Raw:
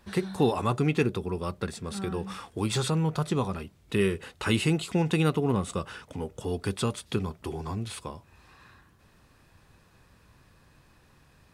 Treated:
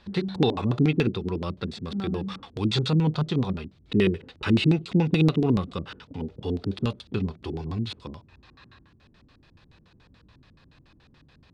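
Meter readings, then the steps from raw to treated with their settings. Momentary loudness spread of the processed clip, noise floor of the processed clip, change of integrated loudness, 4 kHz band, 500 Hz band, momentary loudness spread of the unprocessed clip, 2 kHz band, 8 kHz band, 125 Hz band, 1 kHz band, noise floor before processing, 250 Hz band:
13 LU, -58 dBFS, +3.0 dB, +3.0 dB, +0.5 dB, 12 LU, 0.0 dB, under -10 dB, +4.0 dB, -2.5 dB, -61 dBFS, +4.5 dB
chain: harmonic-percussive split harmonic +5 dB; LFO low-pass square 7 Hz 280–4000 Hz; gain -2 dB

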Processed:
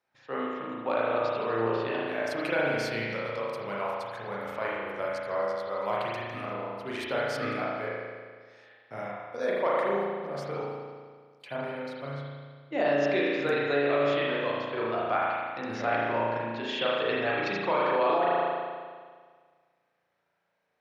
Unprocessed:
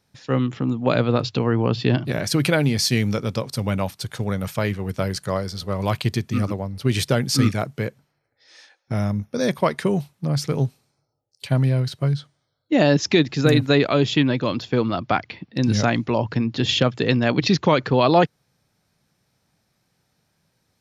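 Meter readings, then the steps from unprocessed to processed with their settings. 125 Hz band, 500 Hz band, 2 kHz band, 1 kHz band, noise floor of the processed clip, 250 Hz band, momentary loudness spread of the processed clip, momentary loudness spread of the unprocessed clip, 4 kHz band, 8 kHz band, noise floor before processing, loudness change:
-21.0 dB, -4.5 dB, -3.5 dB, -3.0 dB, -75 dBFS, -14.0 dB, 12 LU, 9 LU, -12.5 dB, under -20 dB, -72 dBFS, -8.0 dB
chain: three-band isolator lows -21 dB, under 410 Hz, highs -14 dB, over 2800 Hz; spring tank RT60 1.7 s, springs 35 ms, chirp 50 ms, DRR -6 dB; limiter -8 dBFS, peak gain reduction 7 dB; gain -8.5 dB

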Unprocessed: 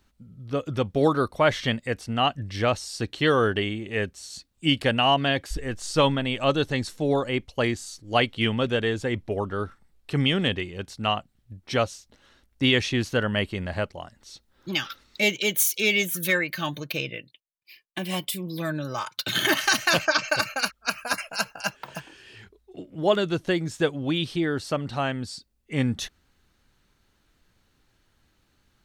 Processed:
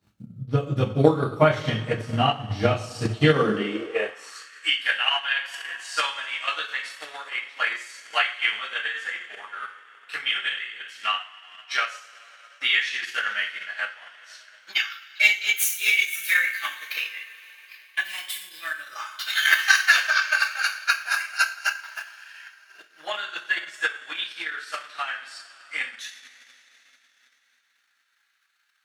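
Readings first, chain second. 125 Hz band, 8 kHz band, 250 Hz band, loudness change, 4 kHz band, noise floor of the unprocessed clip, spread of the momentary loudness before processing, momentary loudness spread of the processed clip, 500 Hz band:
-1.0 dB, -1.0 dB, -5.0 dB, +1.0 dB, +0.5 dB, -68 dBFS, 12 LU, 17 LU, -3.0 dB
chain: two-slope reverb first 0.54 s, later 3.9 s, from -18 dB, DRR -9.5 dB; transient shaper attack +9 dB, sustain -5 dB; high-pass sweep 120 Hz -> 1600 Hz, 3.27–4.51; gain -12.5 dB

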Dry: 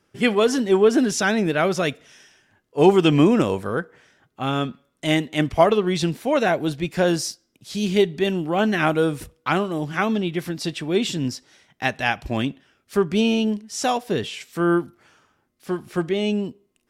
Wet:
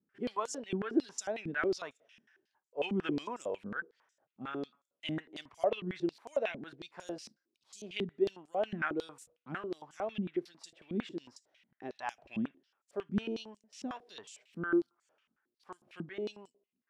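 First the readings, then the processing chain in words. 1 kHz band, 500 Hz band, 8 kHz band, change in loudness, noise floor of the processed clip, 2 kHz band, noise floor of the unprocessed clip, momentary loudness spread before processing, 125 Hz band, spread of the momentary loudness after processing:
-17.0 dB, -16.0 dB, -16.5 dB, -16.0 dB, under -85 dBFS, -15.0 dB, -71 dBFS, 12 LU, -19.5 dB, 16 LU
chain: stepped band-pass 11 Hz 220–7300 Hz; gain -5.5 dB

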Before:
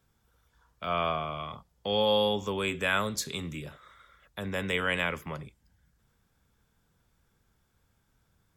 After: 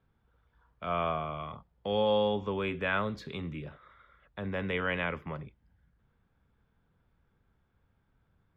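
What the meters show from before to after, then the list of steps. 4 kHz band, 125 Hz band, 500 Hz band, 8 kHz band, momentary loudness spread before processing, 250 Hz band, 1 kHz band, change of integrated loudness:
-8.5 dB, 0.0 dB, -1.0 dB, under -25 dB, 16 LU, -0.5 dB, -2.0 dB, -2.5 dB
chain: air absorption 380 m

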